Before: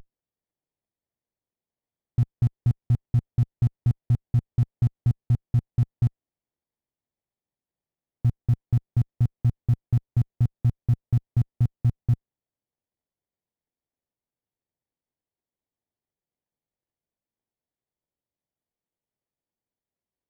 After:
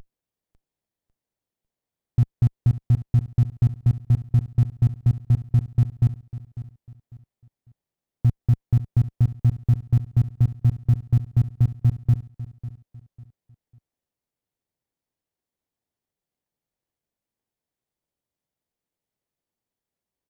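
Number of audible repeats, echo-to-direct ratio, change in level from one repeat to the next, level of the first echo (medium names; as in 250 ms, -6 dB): 2, -14.5 dB, -10.0 dB, -15.0 dB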